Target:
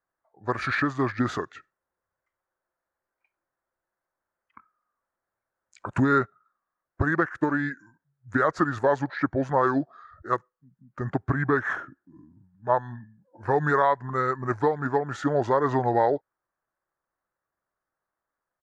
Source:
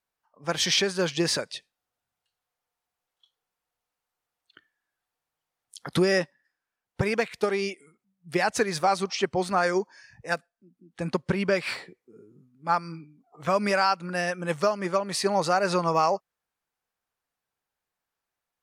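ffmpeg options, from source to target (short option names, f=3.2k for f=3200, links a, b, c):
-af "asetrate=32097,aresample=44100,atempo=1.37395,highshelf=f=2.2k:t=q:w=3:g=-11"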